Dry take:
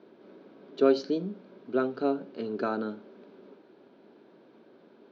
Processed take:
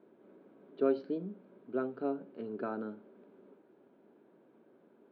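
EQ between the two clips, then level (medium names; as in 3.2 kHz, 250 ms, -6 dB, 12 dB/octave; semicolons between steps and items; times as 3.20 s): distance through air 460 m; -6.0 dB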